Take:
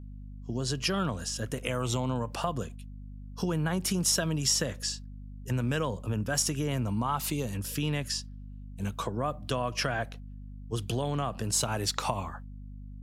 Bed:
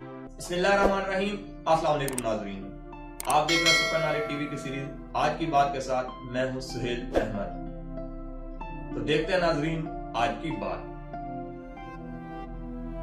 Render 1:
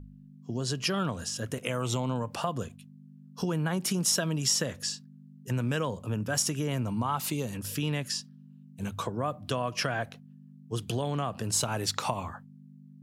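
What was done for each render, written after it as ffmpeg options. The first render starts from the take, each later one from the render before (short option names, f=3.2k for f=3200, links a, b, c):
-af "bandreject=f=50:t=h:w=4,bandreject=f=100:t=h:w=4"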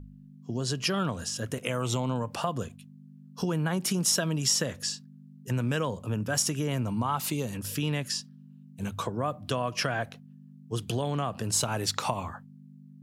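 -af "volume=1dB"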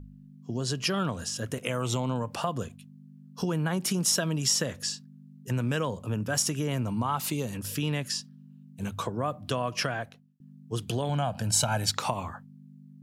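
-filter_complex "[0:a]asettb=1/sr,asplit=3[a][b][c];[a]atrim=end=11.094[d];[b]atrim=start=11.09:end=11.92,asetpts=PTS-STARTPTS,afade=t=in:d=0.004:c=qsin,afade=t=out:st=0.826:d=0.004:c=qsin,aecho=1:1:1.3:0.72,atrim=end_sample=36603[e];[c]atrim=start=11.916[f];[d][e]acrossfade=d=0.004:c1=hsin:c2=qsin[g];[g][f]acrossfade=d=0.004:c1=qsin:c2=hsin,asplit=2[h][i];[h]atrim=end=10.4,asetpts=PTS-STARTPTS,afade=t=out:st=9.82:d=0.58[j];[i]atrim=start=10.4,asetpts=PTS-STARTPTS,afade=t=in:d=0.004:c=hsin[k];[j][k]concat=n=2:v=0:a=1"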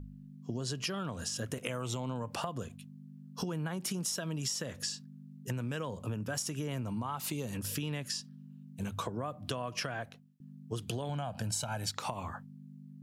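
-af "acompressor=threshold=-33dB:ratio=6"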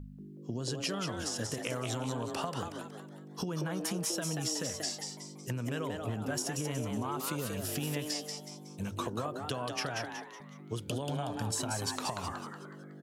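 -filter_complex "[0:a]asplit=6[a][b][c][d][e][f];[b]adelay=185,afreqshift=150,volume=-5dB[g];[c]adelay=370,afreqshift=300,volume=-12.5dB[h];[d]adelay=555,afreqshift=450,volume=-20.1dB[i];[e]adelay=740,afreqshift=600,volume=-27.6dB[j];[f]adelay=925,afreqshift=750,volume=-35.1dB[k];[a][g][h][i][j][k]amix=inputs=6:normalize=0"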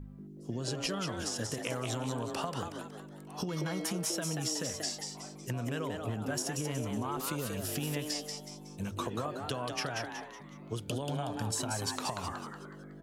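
-filter_complex "[1:a]volume=-27dB[a];[0:a][a]amix=inputs=2:normalize=0"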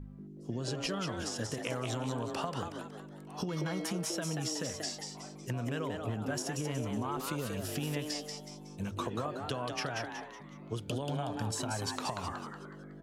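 -af "highshelf=f=7.6k:g=-7.5"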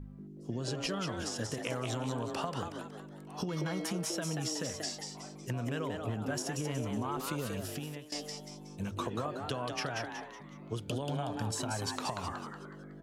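-filter_complex "[0:a]asplit=2[a][b];[a]atrim=end=8.12,asetpts=PTS-STARTPTS,afade=t=out:st=7.54:d=0.58:silence=0.141254[c];[b]atrim=start=8.12,asetpts=PTS-STARTPTS,afade=t=in:d=0.004:c=hsin:silence=0.141254[d];[c][d]concat=n=2:v=0:a=1"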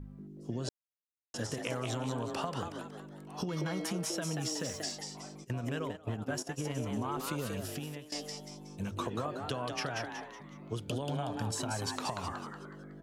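-filter_complex "[0:a]asettb=1/sr,asplit=3[a][b][c];[a]atrim=end=4.384[d];[b]atrim=start=4.38:end=4.92,asetpts=PTS-STARTPTS,afade=t=in:d=0.004:c=qsin,afade=t=out:st=0.536:d=0.004:c=qsin,aeval=exprs='val(0)*gte(abs(val(0)),0.00224)':c=same[e];[c]atrim=start=4.916[f];[d][e]acrossfade=d=0.004:c1=hsin:c2=qsin[g];[g][f]acrossfade=d=0.004:c1=qsin:c2=hsin,asplit=3[h][i][j];[h]afade=t=out:st=5.43:d=0.02[k];[i]agate=range=-16dB:threshold=-37dB:ratio=16:release=100:detection=peak,afade=t=in:st=5.43:d=0.02,afade=t=out:st=6.86:d=0.02[l];[j]afade=t=in:st=6.86:d=0.02[m];[k][l][m]amix=inputs=3:normalize=0,asplit=3[n][o][p];[n]atrim=end=0.69,asetpts=PTS-STARTPTS,afade=t=out:st=0.686:d=0.004:c=hsin[q];[o]atrim=start=0.69:end=1.34,asetpts=PTS-STARTPTS,volume=0[r];[p]atrim=start=1.34,asetpts=PTS-STARTPTS,afade=t=in:d=0.004:c=hsin[s];[q][r][s]concat=n=3:v=0:a=1"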